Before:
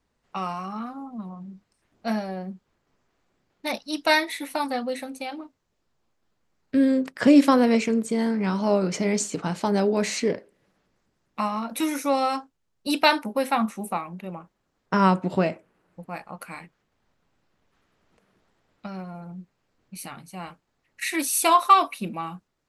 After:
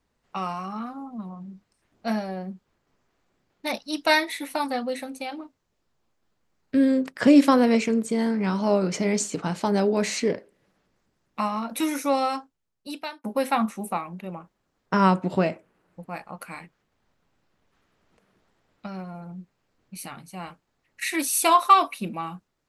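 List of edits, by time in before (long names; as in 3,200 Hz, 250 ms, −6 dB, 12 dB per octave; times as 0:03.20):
0:12.14–0:13.24: fade out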